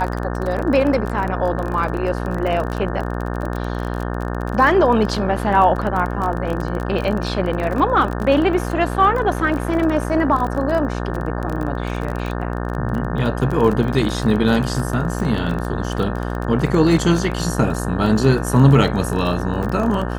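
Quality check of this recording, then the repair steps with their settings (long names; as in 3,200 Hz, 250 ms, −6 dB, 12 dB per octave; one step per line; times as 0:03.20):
mains buzz 60 Hz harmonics 30 −24 dBFS
surface crackle 24 per second −23 dBFS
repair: click removal
hum removal 60 Hz, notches 30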